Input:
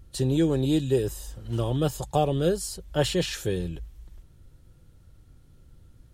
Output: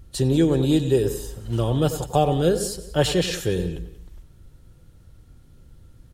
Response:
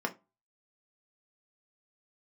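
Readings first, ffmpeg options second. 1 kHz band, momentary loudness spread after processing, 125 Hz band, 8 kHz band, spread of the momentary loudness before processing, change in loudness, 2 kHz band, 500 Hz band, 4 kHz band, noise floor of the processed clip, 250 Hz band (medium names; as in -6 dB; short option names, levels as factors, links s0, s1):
+4.5 dB, 10 LU, +4.0 dB, +4.0 dB, 10 LU, +4.0 dB, +4.5 dB, +4.5 dB, +4.0 dB, -51 dBFS, +4.5 dB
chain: -filter_complex "[0:a]aecho=1:1:185|370:0.133|0.036,asplit=2[s0][s1];[1:a]atrim=start_sample=2205,adelay=93[s2];[s1][s2]afir=irnorm=-1:irlink=0,volume=0.133[s3];[s0][s3]amix=inputs=2:normalize=0,volume=1.58"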